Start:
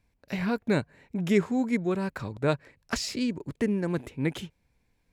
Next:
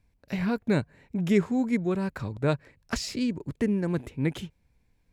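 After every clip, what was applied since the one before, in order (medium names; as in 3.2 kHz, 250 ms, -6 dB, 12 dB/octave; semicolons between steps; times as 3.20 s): bass shelf 190 Hz +6.5 dB; trim -1.5 dB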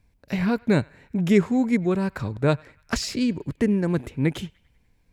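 band-passed feedback delay 98 ms, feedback 58%, band-pass 1.9 kHz, level -24 dB; trim +4.5 dB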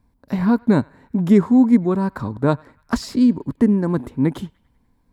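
fifteen-band graphic EQ 250 Hz +9 dB, 1 kHz +9 dB, 2.5 kHz -10 dB, 6.3 kHz -5 dB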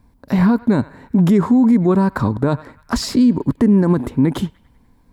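peak limiter -15 dBFS, peak gain reduction 11 dB; trim +8.5 dB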